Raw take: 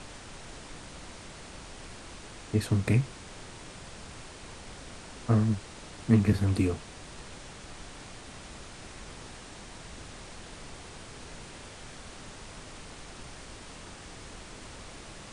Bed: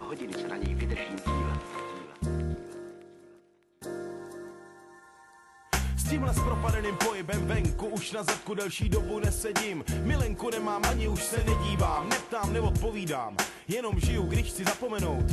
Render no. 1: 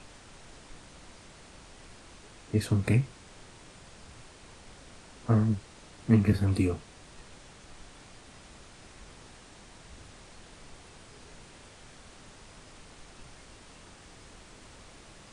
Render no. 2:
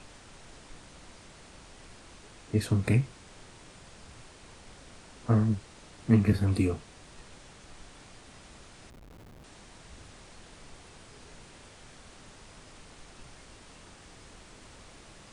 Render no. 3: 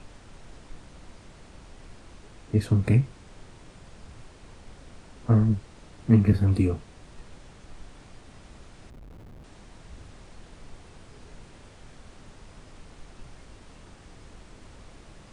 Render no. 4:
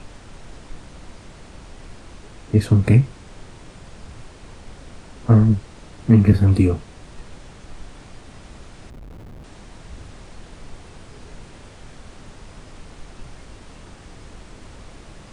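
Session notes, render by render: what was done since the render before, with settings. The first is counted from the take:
noise print and reduce 6 dB
8.90–9.44 s: Schmitt trigger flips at -47 dBFS
tilt EQ -1.5 dB/octave
trim +7 dB; peak limiter -3 dBFS, peak gain reduction 2.5 dB

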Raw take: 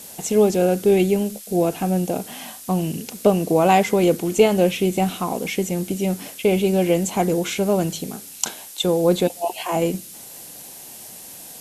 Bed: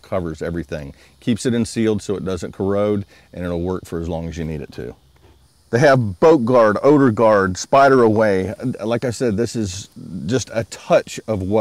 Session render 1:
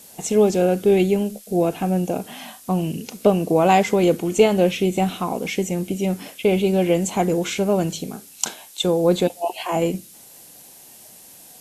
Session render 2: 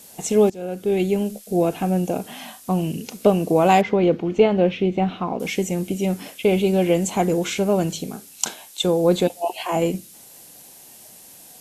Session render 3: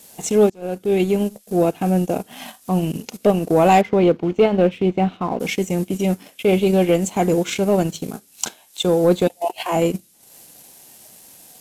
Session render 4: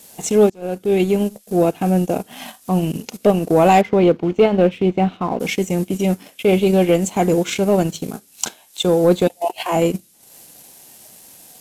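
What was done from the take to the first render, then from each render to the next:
noise print and reduce 6 dB
0.50–1.28 s: fade in, from -21 dB; 3.81–5.40 s: distance through air 270 m
transient shaper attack -4 dB, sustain -8 dB; waveshaping leveller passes 1
trim +1.5 dB; peak limiter -3 dBFS, peak gain reduction 1.5 dB

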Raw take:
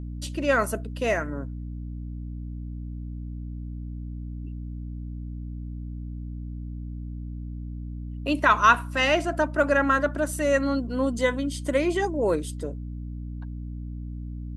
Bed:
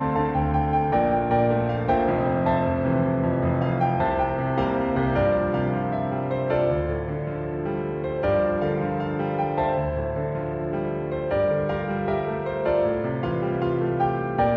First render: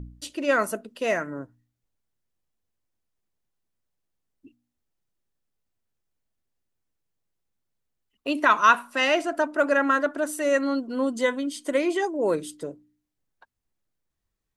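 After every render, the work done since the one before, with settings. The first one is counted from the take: de-hum 60 Hz, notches 5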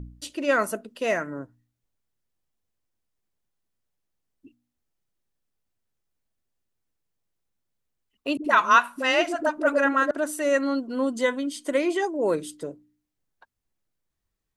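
8.37–10.11 s: phase dispersion highs, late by 73 ms, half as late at 380 Hz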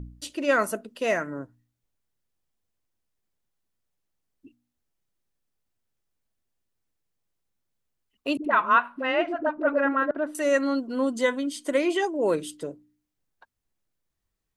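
8.45–10.35 s: distance through air 450 m; 11.85–12.67 s: peaking EQ 2.9 kHz +6 dB 0.42 oct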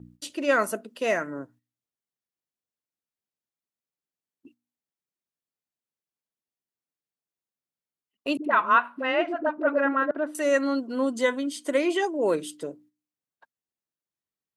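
high-pass 160 Hz 12 dB/octave; gate -54 dBFS, range -10 dB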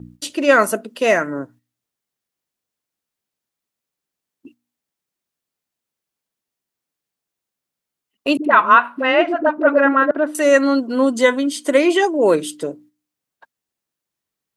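trim +9.5 dB; peak limiter -1 dBFS, peak gain reduction 2 dB

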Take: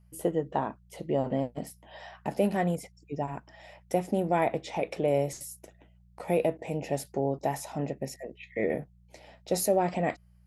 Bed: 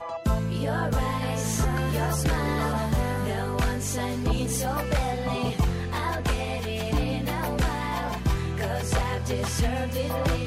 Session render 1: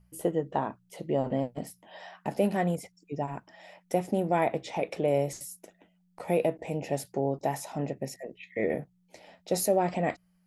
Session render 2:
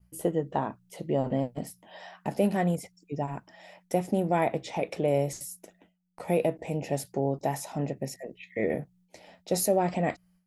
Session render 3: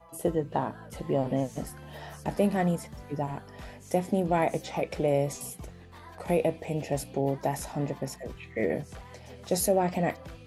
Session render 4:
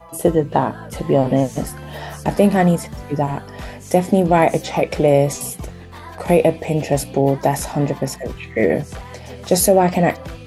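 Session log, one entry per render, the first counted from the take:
de-hum 60 Hz, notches 2
tone controls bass +3 dB, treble +2 dB; expander -57 dBFS
add bed -20 dB
trim +12 dB; peak limiter -2 dBFS, peak gain reduction 1 dB

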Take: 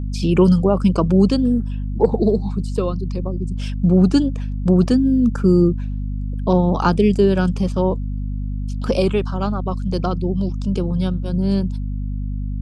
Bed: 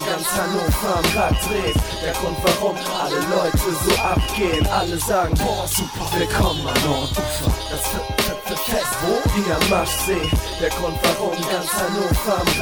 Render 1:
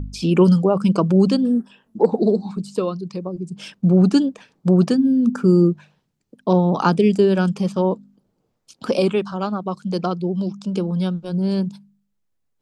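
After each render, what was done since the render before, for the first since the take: de-hum 50 Hz, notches 5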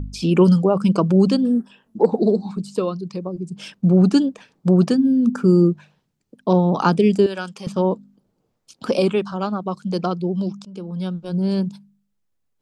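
7.26–7.67 s: high-pass 1.2 kHz 6 dB/octave; 10.65–11.35 s: fade in, from -18.5 dB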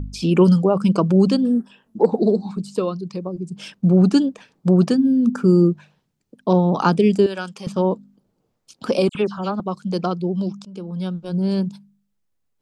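9.09–9.60 s: phase dispersion lows, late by 59 ms, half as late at 3 kHz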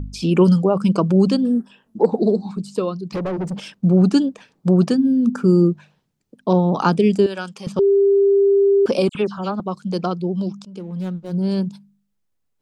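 3.12–3.60 s: overdrive pedal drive 30 dB, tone 1.2 kHz, clips at -16.5 dBFS; 7.79–8.86 s: bleep 397 Hz -11 dBFS; 10.79–11.35 s: median filter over 25 samples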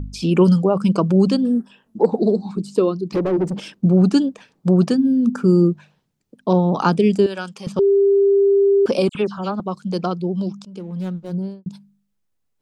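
2.55–3.86 s: peaking EQ 340 Hz +9 dB; 11.24–11.66 s: studio fade out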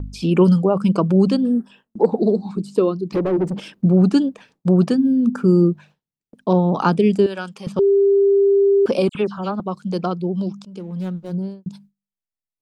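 gate with hold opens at -38 dBFS; dynamic bell 6.3 kHz, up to -5 dB, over -50 dBFS, Q 1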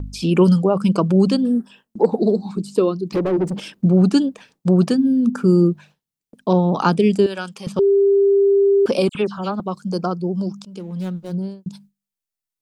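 9.81–10.56 s: time-frequency box 1.7–4.3 kHz -11 dB; treble shelf 3.7 kHz +7 dB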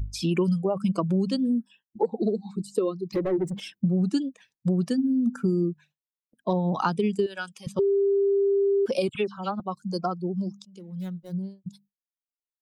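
expander on every frequency bin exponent 1.5; compression, threshold -21 dBFS, peak gain reduction 11 dB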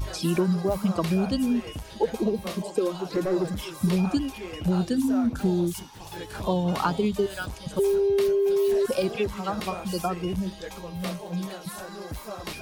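add bed -17.5 dB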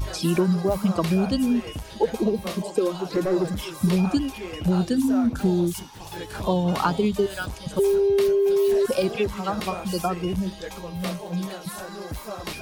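trim +2.5 dB

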